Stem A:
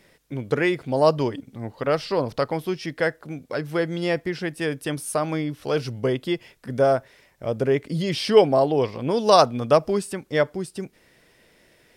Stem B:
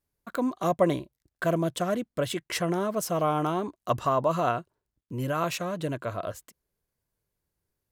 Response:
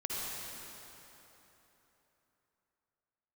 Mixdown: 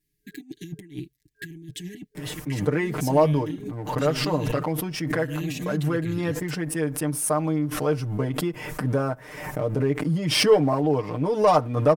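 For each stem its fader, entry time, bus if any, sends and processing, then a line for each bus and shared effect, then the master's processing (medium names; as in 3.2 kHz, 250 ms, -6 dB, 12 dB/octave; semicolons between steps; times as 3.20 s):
-11.0 dB, 2.15 s, no send, ten-band graphic EQ 125 Hz +4 dB, 250 Hz +5 dB, 1 kHz +5 dB, 4 kHz -10 dB; waveshaping leveller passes 1; swell ahead of each attack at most 50 dB/s
0.0 dB, 0.00 s, no send, FFT band-reject 420–1600 Hz; compressor with a negative ratio -35 dBFS, ratio -0.5; peak limiter -26.5 dBFS, peak gain reduction 10 dB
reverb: none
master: comb 6.6 ms, depth 80%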